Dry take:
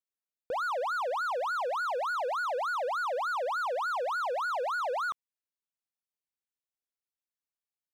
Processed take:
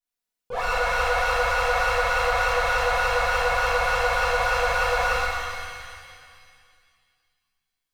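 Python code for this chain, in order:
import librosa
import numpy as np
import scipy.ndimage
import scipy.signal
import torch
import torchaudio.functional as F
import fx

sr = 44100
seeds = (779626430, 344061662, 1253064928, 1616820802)

y = fx.lower_of_two(x, sr, delay_ms=4.1)
y = fx.rev_shimmer(y, sr, seeds[0], rt60_s=2.1, semitones=7, shimmer_db=-8, drr_db=-11.5)
y = y * librosa.db_to_amplitude(-2.0)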